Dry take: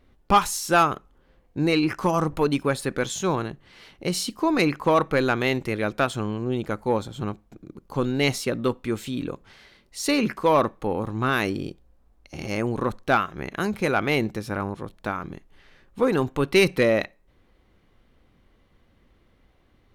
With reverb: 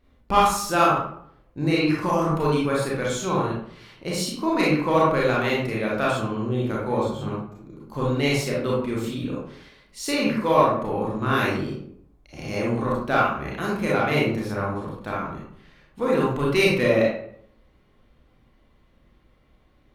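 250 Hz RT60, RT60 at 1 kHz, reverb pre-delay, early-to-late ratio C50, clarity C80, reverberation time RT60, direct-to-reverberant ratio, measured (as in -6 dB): 0.80 s, 0.60 s, 28 ms, 0.5 dB, 5.5 dB, 0.65 s, -5.5 dB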